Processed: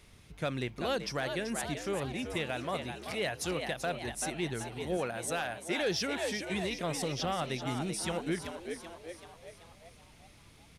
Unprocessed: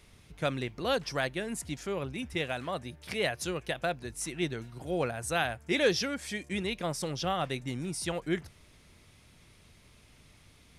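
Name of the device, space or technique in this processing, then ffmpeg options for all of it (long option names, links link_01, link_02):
soft clipper into limiter: -filter_complex "[0:a]asettb=1/sr,asplit=3[link_01][link_02][link_03];[link_01]atrim=end=4.974[link_04];[link_02]atrim=start=4.97:end=5.81,asetpts=PTS-STARTPTS,afade=type=in:duration=0.004:curve=qsin,afade=type=out:start_time=0.836:duration=0.004:curve=qsin,highpass=frequency=210:poles=1[link_05];[link_03]atrim=start=5.806[link_06];[link_04][link_05]acrossfade=duration=0.004:curve1=hsin:curve2=qsin[link_07];[link_07][link_06]acrossfade=duration=0.004:curve1=qsin:curve2=hsin,asplit=7[link_08][link_09][link_10][link_11][link_12][link_13][link_14];[link_09]adelay=384,afreqshift=81,volume=-9dB[link_15];[link_10]adelay=768,afreqshift=162,volume=-14.7dB[link_16];[link_11]adelay=1152,afreqshift=243,volume=-20.4dB[link_17];[link_12]adelay=1536,afreqshift=324,volume=-26dB[link_18];[link_13]adelay=1920,afreqshift=405,volume=-31.7dB[link_19];[link_14]adelay=2304,afreqshift=486,volume=-37.4dB[link_20];[link_08][link_15][link_16][link_17][link_18][link_19][link_20]amix=inputs=7:normalize=0,asoftclip=type=tanh:threshold=-18.5dB,alimiter=limit=-24dB:level=0:latency=1:release=102"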